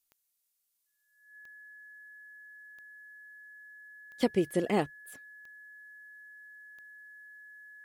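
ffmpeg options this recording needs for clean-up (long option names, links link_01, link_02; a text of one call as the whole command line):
ffmpeg -i in.wav -af "adeclick=threshold=4,bandreject=frequency=1700:width=30,agate=range=-21dB:threshold=-71dB" out.wav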